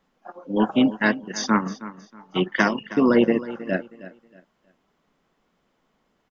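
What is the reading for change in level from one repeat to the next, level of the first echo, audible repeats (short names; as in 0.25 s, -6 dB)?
-11.0 dB, -16.0 dB, 2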